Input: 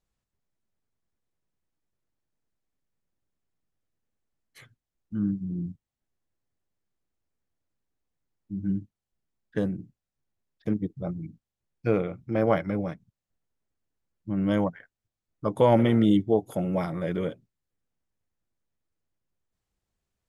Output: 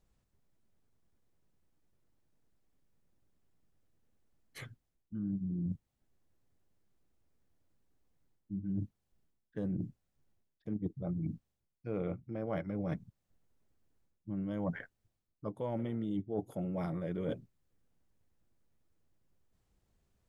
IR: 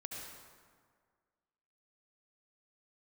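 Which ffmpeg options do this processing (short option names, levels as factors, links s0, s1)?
-af "tiltshelf=f=750:g=3.5,areverse,acompressor=threshold=0.0112:ratio=12,areverse,volume=1.88"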